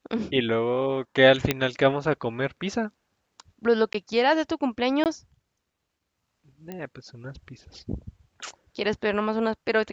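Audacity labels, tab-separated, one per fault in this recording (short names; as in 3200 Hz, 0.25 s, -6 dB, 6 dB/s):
1.510000	1.510000	pop -6 dBFS
3.930000	3.940000	gap
5.040000	5.060000	gap 18 ms
6.720000	6.720000	pop -22 dBFS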